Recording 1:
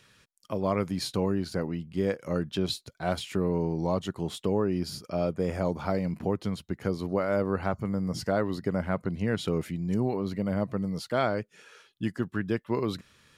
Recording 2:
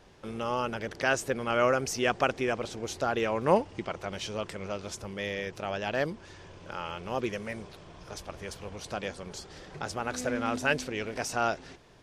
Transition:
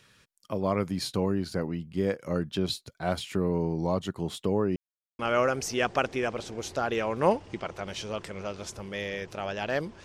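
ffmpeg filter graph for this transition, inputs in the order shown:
-filter_complex "[0:a]apad=whole_dur=10.04,atrim=end=10.04,asplit=2[a][b];[a]atrim=end=4.76,asetpts=PTS-STARTPTS,afade=t=out:st=4.756:d=0.004:c=hsin[c];[b]atrim=start=4.76:end=5.19,asetpts=PTS-STARTPTS,volume=0[d];[1:a]atrim=start=1.44:end=6.29,asetpts=PTS-STARTPTS,afade=t=in:d=0.004:c=hsin[e];[c][d][e]concat=n=3:v=0:a=1"

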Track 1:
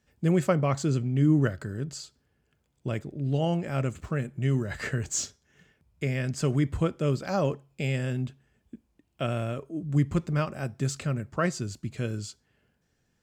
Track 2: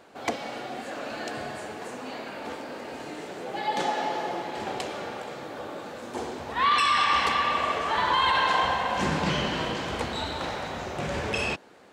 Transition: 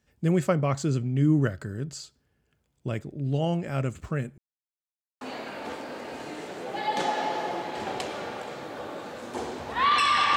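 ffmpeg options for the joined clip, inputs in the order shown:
-filter_complex "[0:a]apad=whole_dur=10.36,atrim=end=10.36,asplit=2[a][b];[a]atrim=end=4.38,asetpts=PTS-STARTPTS,afade=t=out:st=4.376:d=0.004:c=hsin[c];[b]atrim=start=4.38:end=5.21,asetpts=PTS-STARTPTS,volume=0[d];[1:a]atrim=start=2.01:end=7.16,asetpts=PTS-STARTPTS,afade=t=in:d=0.004:c=hsin[e];[c][d][e]concat=n=3:v=0:a=1"

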